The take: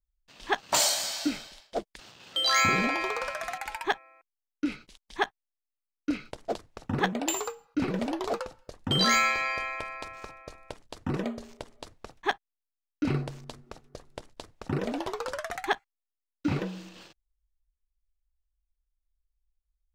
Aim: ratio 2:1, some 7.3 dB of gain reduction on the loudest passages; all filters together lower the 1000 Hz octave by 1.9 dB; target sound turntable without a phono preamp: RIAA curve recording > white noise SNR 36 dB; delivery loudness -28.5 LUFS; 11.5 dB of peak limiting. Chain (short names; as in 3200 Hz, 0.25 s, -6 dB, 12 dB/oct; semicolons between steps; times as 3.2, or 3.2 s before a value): bell 1000 Hz -3 dB; compressor 2:1, threshold -34 dBFS; limiter -28.5 dBFS; RIAA curve recording; white noise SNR 36 dB; gain +7 dB